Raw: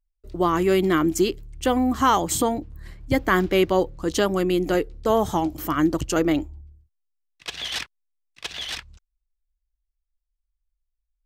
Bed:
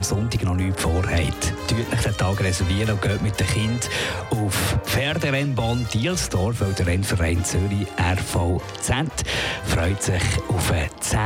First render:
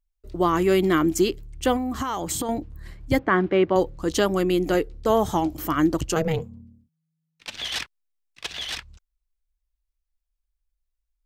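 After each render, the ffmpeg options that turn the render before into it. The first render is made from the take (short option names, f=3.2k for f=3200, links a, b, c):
-filter_complex "[0:a]asettb=1/sr,asplit=3[a][b][c];[a]atrim=end=1.764[d];[b]atrim=start=1.76:end=2.49,asetpts=PTS-STARTPTS,afade=t=in:d=0.004:c=qsin,afade=t=out:st=0.726:d=0.004:c=qsin,acompressor=threshold=-23dB:ratio=10:attack=3.2:release=140:knee=1:detection=peak[e];[c]atrim=start=2.486[f];[d][e]acrossfade=d=0.004:c1=hsin:c2=qsin[g];[g][f]acrossfade=d=0.004:c1=qsin:c2=hsin,asettb=1/sr,asplit=3[h][i][j];[h]atrim=end=3.194[k];[i]atrim=start=3.19:end=3.76,asetpts=PTS-STARTPTS,afade=t=in:d=0.004:c=qsin,afade=t=out:st=0.566:d=0.004:c=qsin,highpass=120,lowpass=2.1k[l];[j]atrim=start=3.756[m];[k][l]acrossfade=d=0.004:c1=hsin:c2=qsin[n];[n][m]acrossfade=d=0.004:c1=qsin:c2=hsin,asplit=3[o][p][q];[o]afade=t=out:st=6.14:d=0.02[r];[p]aeval=exprs='val(0)*sin(2*PI*160*n/s)':c=same,afade=t=in:st=6.14:d=0.02,afade=t=out:st=7.57:d=0.02[s];[q]afade=t=in:st=7.57:d=0.02[t];[r][s][t]amix=inputs=3:normalize=0"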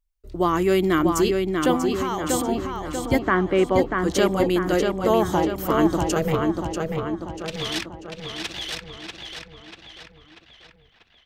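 -filter_complex "[0:a]asplit=2[a][b];[b]adelay=640,lowpass=f=4.9k:p=1,volume=-4dB,asplit=2[c][d];[d]adelay=640,lowpass=f=4.9k:p=1,volume=0.55,asplit=2[e][f];[f]adelay=640,lowpass=f=4.9k:p=1,volume=0.55,asplit=2[g][h];[h]adelay=640,lowpass=f=4.9k:p=1,volume=0.55,asplit=2[i][j];[j]adelay=640,lowpass=f=4.9k:p=1,volume=0.55,asplit=2[k][l];[l]adelay=640,lowpass=f=4.9k:p=1,volume=0.55,asplit=2[m][n];[n]adelay=640,lowpass=f=4.9k:p=1,volume=0.55[o];[a][c][e][g][i][k][m][o]amix=inputs=8:normalize=0"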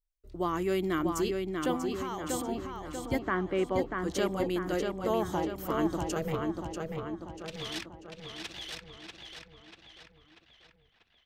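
-af "volume=-10dB"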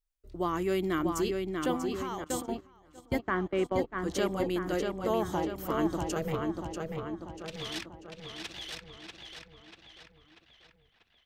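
-filter_complex "[0:a]asettb=1/sr,asplit=3[a][b][c];[a]atrim=end=2.244[d];[b]atrim=start=2.24:end=4.11,asetpts=PTS-STARTPTS,afade=t=in:d=0.004:c=qsin,afade=t=out:st=1.866:d=0.004:c=qsin,agate=range=-19dB:threshold=-35dB:ratio=16:release=100:detection=peak[e];[c]atrim=start=4.106[f];[d][e]acrossfade=d=0.004:c1=hsin:c2=qsin[g];[g][f]acrossfade=d=0.004:c1=qsin:c2=hsin"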